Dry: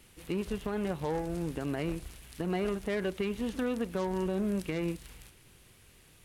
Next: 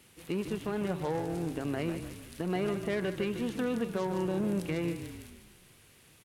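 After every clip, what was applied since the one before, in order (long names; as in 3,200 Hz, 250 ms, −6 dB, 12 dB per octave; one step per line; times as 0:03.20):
high-pass filter 90 Hz
on a send: echo with shifted repeats 150 ms, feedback 50%, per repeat −32 Hz, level −9.5 dB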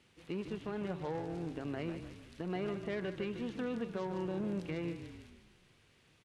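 low-pass filter 5,300 Hz 12 dB per octave
level −6 dB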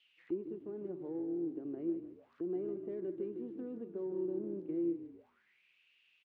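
parametric band 150 Hz +2 dB 2.7 octaves
envelope filter 340–3,300 Hz, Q 6.8, down, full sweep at −41.5 dBFS
level +6.5 dB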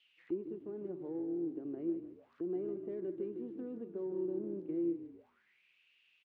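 no processing that can be heard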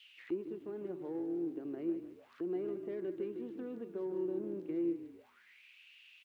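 tilt shelving filter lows −7 dB
level +5.5 dB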